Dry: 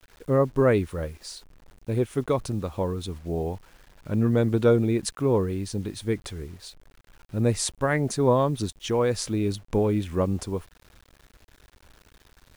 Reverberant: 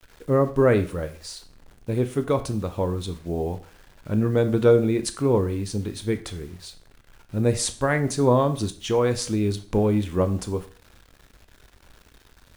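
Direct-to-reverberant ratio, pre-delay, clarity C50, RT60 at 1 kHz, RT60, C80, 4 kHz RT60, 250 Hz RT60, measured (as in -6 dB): 9.0 dB, 6 ms, 14.0 dB, 0.45 s, 0.45 s, 18.0 dB, 0.40 s, 0.55 s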